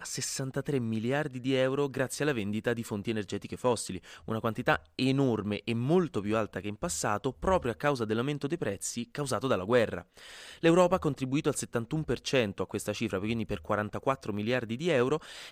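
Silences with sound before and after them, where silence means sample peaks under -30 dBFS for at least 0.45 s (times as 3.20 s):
9.99–10.63 s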